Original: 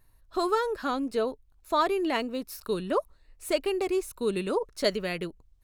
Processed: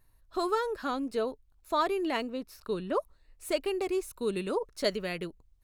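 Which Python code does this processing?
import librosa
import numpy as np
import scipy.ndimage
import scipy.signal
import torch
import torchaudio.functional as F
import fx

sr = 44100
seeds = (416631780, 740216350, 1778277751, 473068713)

y = fx.lowpass(x, sr, hz=3700.0, slope=6, at=(2.3, 2.95))
y = F.gain(torch.from_numpy(y), -3.0).numpy()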